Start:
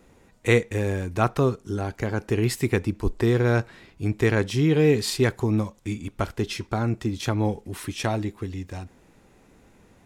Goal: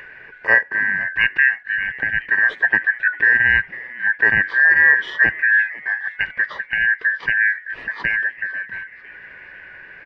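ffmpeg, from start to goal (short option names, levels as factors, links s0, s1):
-filter_complex "[0:a]afftfilt=real='real(if(lt(b,272),68*(eq(floor(b/68),0)*1+eq(floor(b/68),1)*0+eq(floor(b/68),2)*3+eq(floor(b/68),3)*2)+mod(b,68),b),0)':imag='imag(if(lt(b,272),68*(eq(floor(b/68),0)*1+eq(floor(b/68),1)*0+eq(floor(b/68),2)*3+eq(floor(b/68),3)*2)+mod(b,68),b),0)':win_size=2048:overlap=0.75,lowpass=f=3000:w=0.5412,lowpass=f=3000:w=1.3066,adynamicequalizer=threshold=0.0158:dfrequency=1700:dqfactor=7.6:tfrequency=1700:tqfactor=7.6:attack=5:release=100:ratio=0.375:range=4:mode=boostabove:tftype=bell,acompressor=mode=upward:threshold=0.0355:ratio=2.5,asplit=2[s0][s1];[s1]asplit=4[s2][s3][s4][s5];[s2]adelay=498,afreqshift=120,volume=0.1[s6];[s3]adelay=996,afreqshift=240,volume=0.0519[s7];[s4]adelay=1494,afreqshift=360,volume=0.0269[s8];[s5]adelay=1992,afreqshift=480,volume=0.0141[s9];[s6][s7][s8][s9]amix=inputs=4:normalize=0[s10];[s0][s10]amix=inputs=2:normalize=0,volume=1.19"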